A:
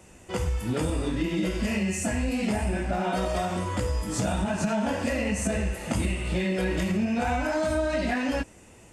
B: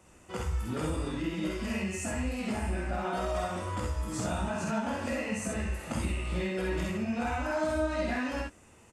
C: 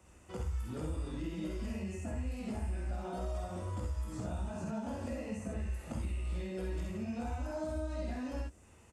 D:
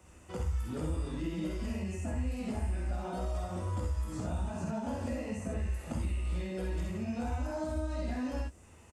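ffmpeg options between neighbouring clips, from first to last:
-af "equalizer=f=1200:w=2.3:g=6,aecho=1:1:51|64:0.631|0.596,volume=0.376"
-filter_complex "[0:a]equalizer=f=64:t=o:w=1.1:g=8.5,acrossover=split=840|4000[s0][s1][s2];[s0]acompressor=threshold=0.0316:ratio=4[s3];[s1]acompressor=threshold=0.00224:ratio=4[s4];[s2]acompressor=threshold=0.00178:ratio=4[s5];[s3][s4][s5]amix=inputs=3:normalize=0,volume=0.596"
-filter_complex "[0:a]asplit=2[s0][s1];[s1]adelay=12,volume=0.251[s2];[s0][s2]amix=inputs=2:normalize=0,volume=1.41"

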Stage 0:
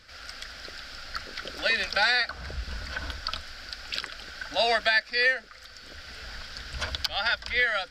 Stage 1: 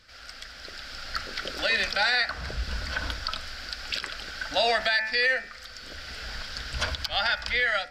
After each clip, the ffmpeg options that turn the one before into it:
-af "bandreject=f=73.11:t=h:w=4,bandreject=f=146.22:t=h:w=4,bandreject=f=219.33:t=h:w=4,bandreject=f=292.44:t=h:w=4,bandreject=f=365.55:t=h:w=4,bandreject=f=438.66:t=h:w=4,bandreject=f=511.77:t=h:w=4,bandreject=f=584.88:t=h:w=4,bandreject=f=657.99:t=h:w=4,bandreject=f=731.1:t=h:w=4,bandreject=f=804.21:t=h:w=4,bandreject=f=877.32:t=h:w=4,bandreject=f=950.43:t=h:w=4,bandreject=f=1023.54:t=h:w=4,bandreject=f=1096.65:t=h:w=4,bandreject=f=1169.76:t=h:w=4,bandreject=f=1242.87:t=h:w=4,bandreject=f=1315.98:t=h:w=4,bandreject=f=1389.09:t=h:w=4,bandreject=f=1462.2:t=h:w=4,bandreject=f=1535.31:t=h:w=4,bandreject=f=1608.42:t=h:w=4,bandreject=f=1681.53:t=h:w=4,bandreject=f=1754.64:t=h:w=4,bandreject=f=1827.75:t=h:w=4,bandreject=f=1900.86:t=h:w=4,bandreject=f=1973.97:t=h:w=4,bandreject=f=2047.08:t=h:w=4,bandreject=f=2120.19:t=h:w=4,bandreject=f=2193.3:t=h:w=4,bandreject=f=2266.41:t=h:w=4,bandreject=f=2339.52:t=h:w=4,bandreject=f=2412.63:t=h:w=4,bandreject=f=2485.74:t=h:w=4,bandreject=f=2558.85:t=h:w=4,bandreject=f=2631.96:t=h:w=4,bandreject=f=2705.07:t=h:w=4,alimiter=limit=0.126:level=0:latency=1:release=80,dynaudnorm=f=550:g=3:m=2.11,volume=0.75"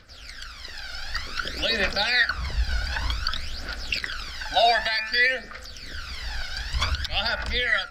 -filter_complex "[0:a]aphaser=in_gain=1:out_gain=1:delay=1.4:decay=0.68:speed=0.54:type=triangular,acrossover=split=6100[s0][s1];[s1]asoftclip=type=tanh:threshold=0.0112[s2];[s0][s2]amix=inputs=2:normalize=0"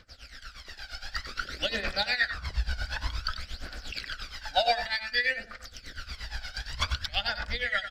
-filter_complex "[0:a]tremolo=f=8.5:d=0.84,asplit=2[s0][s1];[s1]aecho=0:1:94:0.282[s2];[s0][s2]amix=inputs=2:normalize=0,volume=0.75"

